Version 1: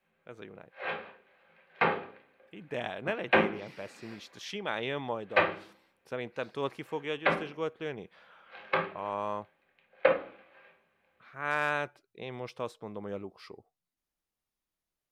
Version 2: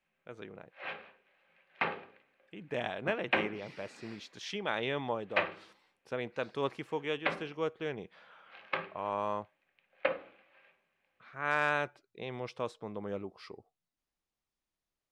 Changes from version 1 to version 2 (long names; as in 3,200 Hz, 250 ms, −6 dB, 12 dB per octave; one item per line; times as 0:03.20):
background: send −9.5 dB
master: add low-pass filter 8,500 Hz 12 dB per octave